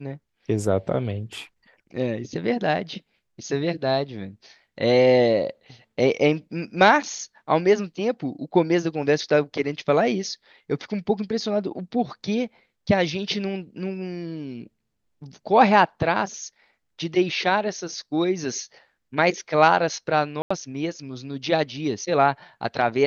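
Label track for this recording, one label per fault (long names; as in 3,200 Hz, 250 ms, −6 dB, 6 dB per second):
20.420000	20.500000	drop-out 85 ms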